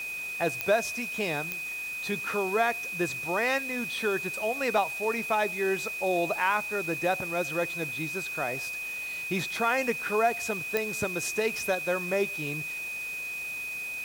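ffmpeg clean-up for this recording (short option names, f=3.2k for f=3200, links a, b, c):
-af "adeclick=t=4,bandreject=f=2.5k:w=30,afwtdn=0.005"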